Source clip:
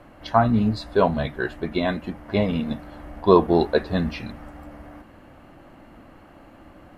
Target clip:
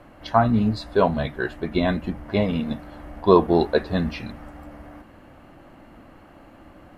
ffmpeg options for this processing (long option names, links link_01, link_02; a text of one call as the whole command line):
ffmpeg -i in.wav -filter_complex "[0:a]asettb=1/sr,asplit=3[link_01][link_02][link_03];[link_01]atrim=end=1.734[link_04];[link_02]atrim=start=1.73:end=2.29,asetpts=PTS-STARTPTS,afade=type=in:duration=0.004:curve=qsin,afade=type=out:start_time=0.556:duration=0.004:curve=qsin,lowshelf=frequency=180:gain=8[link_05];[link_03]atrim=start=2.286[link_06];[link_04][link_05]acrossfade=duration=0.004:curve1=hsin:curve2=qsin[link_07];[link_07][link_06]acrossfade=duration=0.004:curve1=qsin:curve2=hsin" out.wav